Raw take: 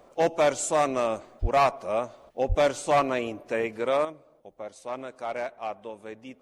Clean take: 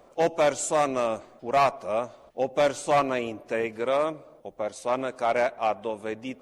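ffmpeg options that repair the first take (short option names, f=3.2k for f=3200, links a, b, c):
-filter_complex "[0:a]asplit=3[a][b][c];[a]afade=t=out:st=1.41:d=0.02[d];[b]highpass=f=140:w=0.5412,highpass=f=140:w=1.3066,afade=t=in:st=1.41:d=0.02,afade=t=out:st=1.53:d=0.02[e];[c]afade=t=in:st=1.53:d=0.02[f];[d][e][f]amix=inputs=3:normalize=0,asplit=3[g][h][i];[g]afade=t=out:st=2.48:d=0.02[j];[h]highpass=f=140:w=0.5412,highpass=f=140:w=1.3066,afade=t=in:st=2.48:d=0.02,afade=t=out:st=2.6:d=0.02[k];[i]afade=t=in:st=2.6:d=0.02[l];[j][k][l]amix=inputs=3:normalize=0,asetnsamples=n=441:p=0,asendcmd='4.05 volume volume 8dB',volume=0dB"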